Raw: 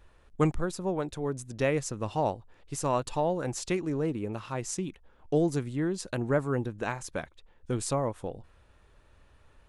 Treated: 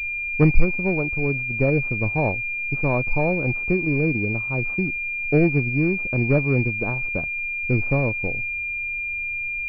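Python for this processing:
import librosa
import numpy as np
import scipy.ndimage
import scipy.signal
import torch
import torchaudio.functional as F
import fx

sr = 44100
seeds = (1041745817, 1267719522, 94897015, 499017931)

p1 = fx.tilt_eq(x, sr, slope=-3.0)
p2 = fx.backlash(p1, sr, play_db=-24.5)
p3 = p1 + F.gain(torch.from_numpy(p2), -8.5).numpy()
y = fx.pwm(p3, sr, carrier_hz=2400.0)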